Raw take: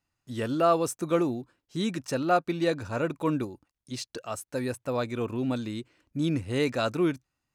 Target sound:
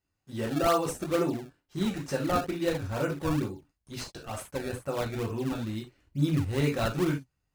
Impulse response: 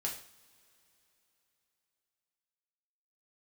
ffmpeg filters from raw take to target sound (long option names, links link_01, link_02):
-filter_complex "[1:a]atrim=start_sample=2205,atrim=end_sample=3528[link_01];[0:a][link_01]afir=irnorm=-1:irlink=0,asplit=2[link_02][link_03];[link_03]acrusher=samples=25:mix=1:aa=0.000001:lfo=1:lforange=40:lforate=2.2,volume=-3.5dB[link_04];[link_02][link_04]amix=inputs=2:normalize=0,asubboost=boost=2:cutoff=170,volume=-5dB"